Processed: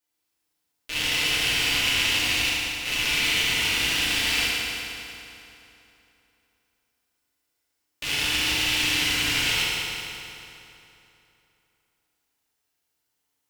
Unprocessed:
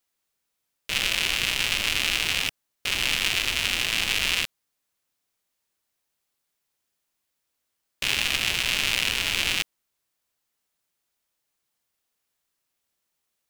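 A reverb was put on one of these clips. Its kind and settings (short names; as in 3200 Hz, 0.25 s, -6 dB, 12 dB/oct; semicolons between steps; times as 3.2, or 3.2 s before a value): FDN reverb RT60 3 s, high-frequency decay 0.8×, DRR -9 dB; gain -7.5 dB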